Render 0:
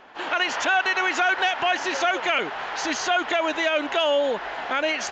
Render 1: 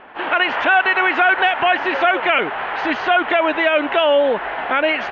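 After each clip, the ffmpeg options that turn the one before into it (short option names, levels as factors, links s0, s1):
-af "lowpass=f=2900:w=0.5412,lowpass=f=2900:w=1.3066,volume=2.24"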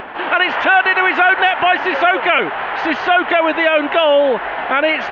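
-af "acompressor=mode=upward:threshold=0.0562:ratio=2.5,volume=1.33"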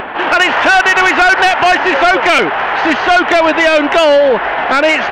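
-af "asoftclip=type=tanh:threshold=0.266,volume=2.37"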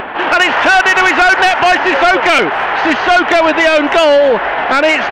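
-af "aecho=1:1:259:0.0668"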